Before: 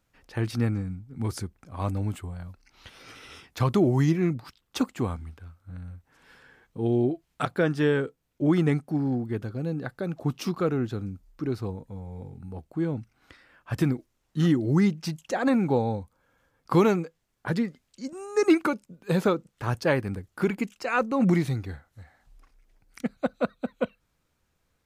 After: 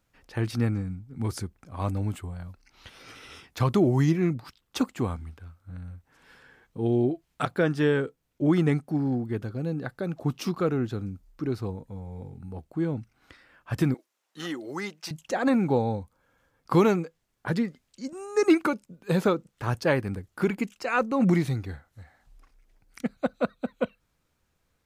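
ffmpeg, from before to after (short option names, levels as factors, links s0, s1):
-filter_complex "[0:a]asettb=1/sr,asplit=3[s0][s1][s2];[s0]atrim=end=13.944[s3];[s1]atrim=start=13.94:end=15.11,asetpts=PTS-STARTPTS,afade=t=in:d=0.004:c=qsin,afade=t=out:st=1.166:d=0.004:c=qsin,highpass=560[s4];[s2]atrim=start=15.106[s5];[s3][s4]acrossfade=d=0.004:c1=hsin:c2=qsin[s6];[s6][s5]acrossfade=d=0.004:c1=qsin:c2=hsin"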